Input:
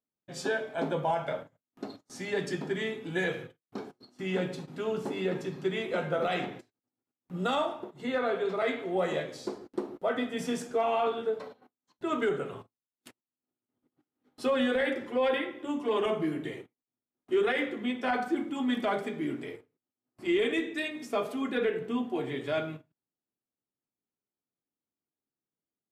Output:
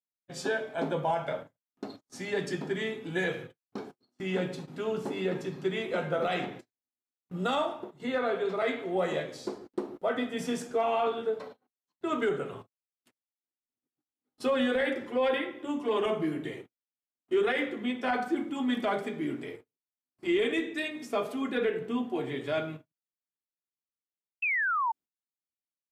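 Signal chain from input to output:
sound drawn into the spectrogram fall, 0:24.42–0:24.92, 870–2,700 Hz −28 dBFS
noise gate −48 dBFS, range −17 dB

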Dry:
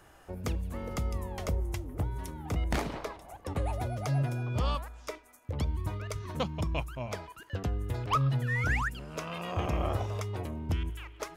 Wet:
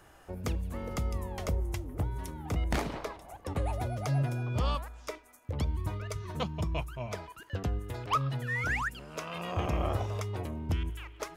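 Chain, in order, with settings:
0:06.01–0:07.18: notch comb filter 270 Hz
0:07.79–0:09.35: low-shelf EQ 240 Hz −7 dB

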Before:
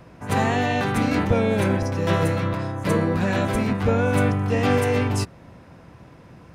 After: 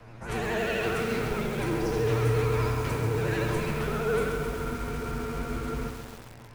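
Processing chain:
parametric band 2,400 Hz +3 dB 2 octaves
hum removal 144.1 Hz, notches 33
in parallel at −1 dB: compressor whose output falls as the input rises −26 dBFS, ratio −0.5
on the sum: tuned comb filter 55 Hz, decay 0.68 s, harmonics odd, mix 90%
tape delay 88 ms, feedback 87%, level −17 dB, low-pass 5,600 Hz
frequency shifter −48 Hz
pitch vibrato 12 Hz 92 cents
on a send at −16 dB: convolution reverb RT60 1.8 s, pre-delay 30 ms
on the sum: frozen spectrum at 0:04.38, 1.51 s
feedback echo at a low word length 135 ms, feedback 80%, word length 7 bits, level −7 dB
level +1 dB

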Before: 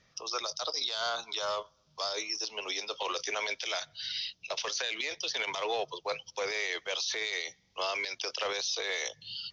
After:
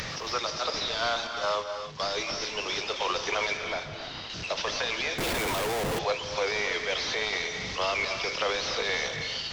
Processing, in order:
linear delta modulator 32 kbit/s, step −37 dBFS
0:01.27–0:02.00: noise gate −35 dBFS, range −15 dB
upward compression, threshold −38 dBFS
0:03.57–0:04.30: high-shelf EQ 2,100 Hz −12 dB
reverb whose tail is shaped and stops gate 330 ms rising, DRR 6.5 dB
0:05.18–0:05.99: comparator with hysteresis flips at −37 dBFS
level +5 dB

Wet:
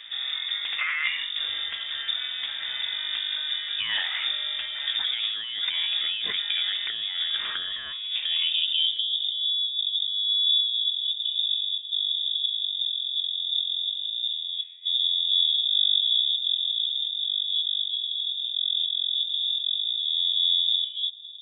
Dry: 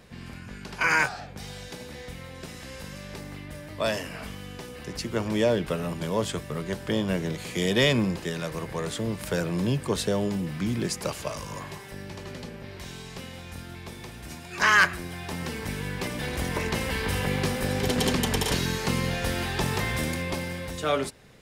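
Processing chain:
0:13.90–0:14.42: samples sorted by size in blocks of 64 samples
low-shelf EQ 140 Hz +10.5 dB
compressor whose output falls as the input rises −29 dBFS, ratio −1
low-pass filter sweep 1,700 Hz → 210 Hz, 0:07.93–0:09.62
voice inversion scrambler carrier 3,600 Hz

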